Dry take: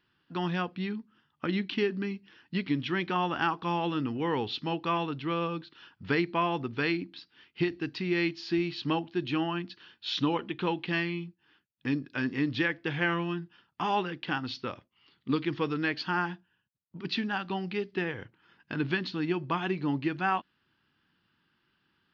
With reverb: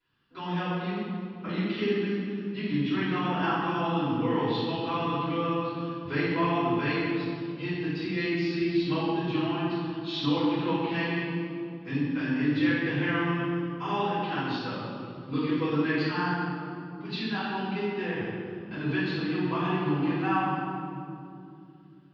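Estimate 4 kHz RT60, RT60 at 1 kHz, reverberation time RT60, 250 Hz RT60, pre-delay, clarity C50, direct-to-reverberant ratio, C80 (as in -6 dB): 1.5 s, 2.4 s, 2.7 s, 3.9 s, 3 ms, -3.0 dB, -16.5 dB, -1.0 dB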